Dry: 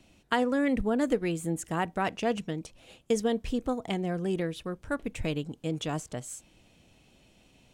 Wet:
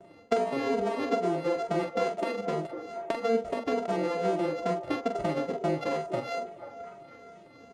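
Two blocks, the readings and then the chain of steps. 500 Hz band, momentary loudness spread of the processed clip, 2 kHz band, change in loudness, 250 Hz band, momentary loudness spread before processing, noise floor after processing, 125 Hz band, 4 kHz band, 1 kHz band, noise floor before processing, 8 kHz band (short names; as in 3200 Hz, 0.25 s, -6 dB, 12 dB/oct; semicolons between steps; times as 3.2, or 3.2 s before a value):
+3.5 dB, 13 LU, -2.0 dB, +0.5 dB, -3.0 dB, 11 LU, -53 dBFS, -4.0 dB, -3.0 dB, +3.5 dB, -62 dBFS, n/a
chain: sample sorter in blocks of 64 samples; HPF 130 Hz 12 dB/oct; notch 1500 Hz, Q 18; gate with hold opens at -50 dBFS; bell 480 Hz +12 dB 1.9 oct; compressor 6:1, threshold -29 dBFS, peak gain reduction 15.5 dB; air absorption 89 m; doubler 44 ms -7 dB; delay with a stepping band-pass 0.244 s, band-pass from 370 Hz, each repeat 0.7 oct, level -7 dB; endless flanger 2.7 ms -2.3 Hz; gain +6.5 dB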